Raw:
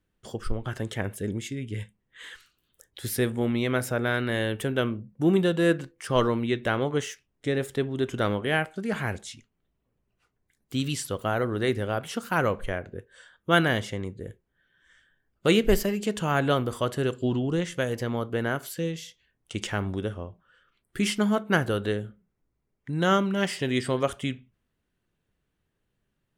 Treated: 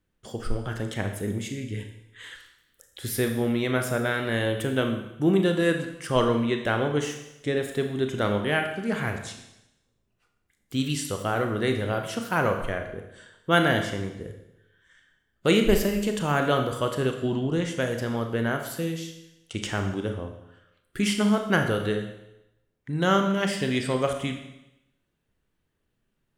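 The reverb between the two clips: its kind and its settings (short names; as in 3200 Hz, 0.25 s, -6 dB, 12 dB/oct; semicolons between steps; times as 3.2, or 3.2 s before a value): Schroeder reverb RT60 0.89 s, combs from 27 ms, DRR 5 dB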